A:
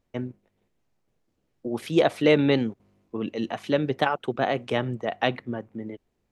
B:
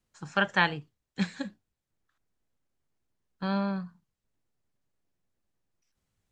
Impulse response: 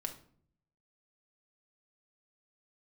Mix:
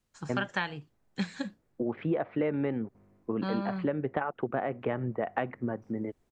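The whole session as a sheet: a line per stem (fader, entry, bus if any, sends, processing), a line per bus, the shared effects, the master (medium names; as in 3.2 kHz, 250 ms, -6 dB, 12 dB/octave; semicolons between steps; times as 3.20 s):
+2.0 dB, 0.15 s, no send, low-pass 2 kHz 24 dB/octave
+1.0 dB, 0.00 s, no send, none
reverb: none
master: compression 6:1, threshold -27 dBFS, peak gain reduction 14 dB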